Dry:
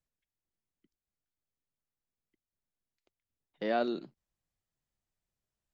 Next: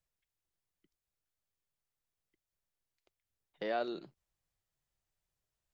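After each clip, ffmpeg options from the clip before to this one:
-filter_complex "[0:a]equalizer=f=240:w=2.1:g=-9,asplit=2[a][b];[b]acompressor=threshold=-41dB:ratio=6,volume=2.5dB[c];[a][c]amix=inputs=2:normalize=0,volume=-6dB"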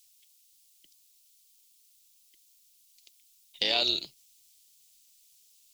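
-af "equalizer=f=73:w=2.1:g=-14.5,aexciter=amount=9.1:drive=9.6:freq=2.5k,tremolo=f=270:d=0.571,volume=3dB"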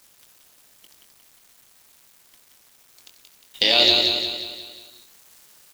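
-filter_complex "[0:a]asplit=2[a][b];[b]aecho=0:1:22|67:0.473|0.158[c];[a][c]amix=inputs=2:normalize=0,acrusher=bits=8:mix=0:aa=0.000001,asplit=2[d][e];[e]aecho=0:1:178|356|534|712|890|1068:0.631|0.315|0.158|0.0789|0.0394|0.0197[f];[d][f]amix=inputs=2:normalize=0,volume=8.5dB"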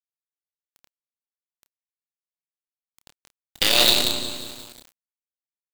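-filter_complex "[0:a]acrusher=bits=3:dc=4:mix=0:aa=0.000001,asplit=2[a][b];[b]adelay=29,volume=-10.5dB[c];[a][c]amix=inputs=2:normalize=0,volume=-1dB"

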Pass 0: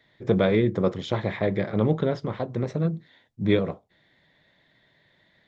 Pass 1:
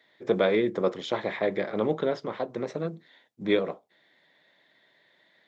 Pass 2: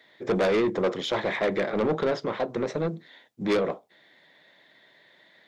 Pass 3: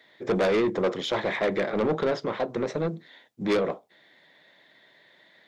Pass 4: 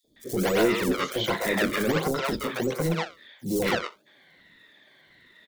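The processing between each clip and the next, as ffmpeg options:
-af "highpass=310"
-af "asoftclip=type=tanh:threshold=-25dB,volume=6dB"
-af anull
-filter_complex "[0:a]afftfilt=real='re*pow(10,9/40*sin(2*PI*(2*log(max(b,1)*sr/1024/100)/log(2)-(-1.3)*(pts-256)/sr)))':imag='im*pow(10,9/40*sin(2*PI*(2*log(max(b,1)*sr/1024/100)/log(2)-(-1.3)*(pts-256)/sr)))':win_size=1024:overlap=0.75,acrossover=split=220|970|3700[a][b][c][d];[b]acrusher=samples=30:mix=1:aa=0.000001:lfo=1:lforange=48:lforate=1.4[e];[a][e][c][d]amix=inputs=4:normalize=0,acrossover=split=550|5600[f][g][h];[f]adelay=40[i];[g]adelay=160[j];[i][j][h]amix=inputs=3:normalize=0,volume=1.5dB"

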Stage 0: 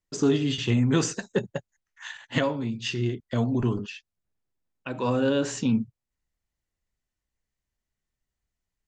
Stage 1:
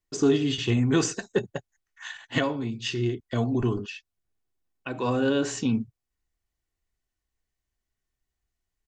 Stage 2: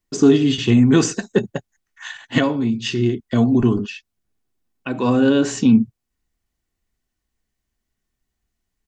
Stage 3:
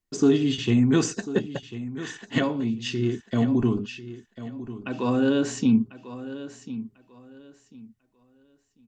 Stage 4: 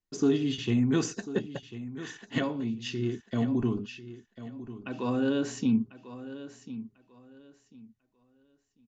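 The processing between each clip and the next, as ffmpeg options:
-af "aecho=1:1:2.7:0.32"
-af "equalizer=f=220:t=o:w=0.76:g=8,volume=5.5dB"
-af "aecho=1:1:1045|2090|3135:0.2|0.0479|0.0115,volume=-6.5dB"
-af "aresample=16000,aresample=44100,volume=-5.5dB"

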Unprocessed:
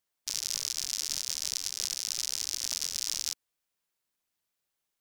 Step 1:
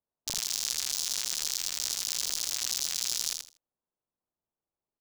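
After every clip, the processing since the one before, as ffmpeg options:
-filter_complex "[0:a]acrossover=split=110|1100[a][b][c];[c]acrusher=bits=3:mix=0:aa=0.000001[d];[a][b][d]amix=inputs=3:normalize=0,aecho=1:1:80|160|240:0.562|0.112|0.0225"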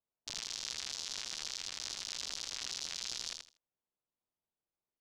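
-af "lowpass=4.5k,volume=-4dB"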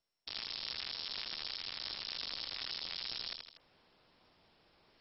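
-af "areverse,acompressor=mode=upward:threshold=-44dB:ratio=2.5,areverse,volume=1dB" -ar 22050 -c:a mp2 -b:a 32k

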